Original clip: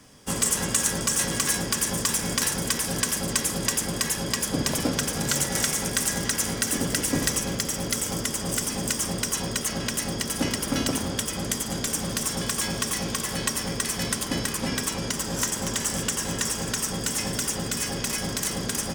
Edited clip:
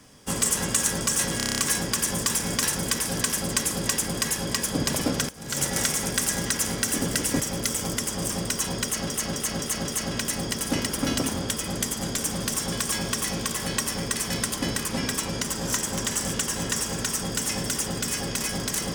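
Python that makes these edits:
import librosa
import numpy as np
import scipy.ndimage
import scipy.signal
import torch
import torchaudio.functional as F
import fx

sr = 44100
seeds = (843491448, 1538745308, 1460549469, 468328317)

y = fx.edit(x, sr, fx.stutter(start_s=1.37, slice_s=0.03, count=8),
    fx.fade_in_from(start_s=5.08, length_s=0.34, curve='qua', floor_db=-18.0),
    fx.cut(start_s=7.19, length_s=0.48),
    fx.cut(start_s=8.57, length_s=0.46),
    fx.repeat(start_s=9.57, length_s=0.26, count=5), tone=tone)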